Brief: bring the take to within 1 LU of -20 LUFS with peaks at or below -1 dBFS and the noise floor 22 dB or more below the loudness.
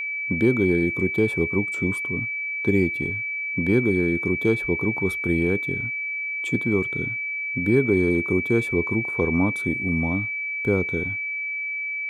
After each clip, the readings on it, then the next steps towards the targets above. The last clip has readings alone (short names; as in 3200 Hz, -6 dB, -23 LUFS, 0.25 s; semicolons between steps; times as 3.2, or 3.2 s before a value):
steady tone 2300 Hz; tone level -26 dBFS; loudness -23.0 LUFS; peak -8.0 dBFS; loudness target -20.0 LUFS
-> notch 2300 Hz, Q 30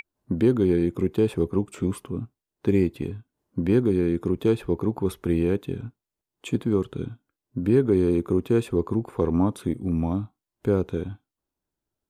steady tone none; loudness -25.0 LUFS; peak -9.0 dBFS; loudness target -20.0 LUFS
-> gain +5 dB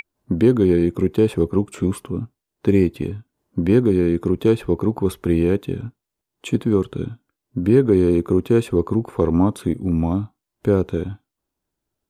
loudness -20.0 LUFS; peak -4.0 dBFS; noise floor -83 dBFS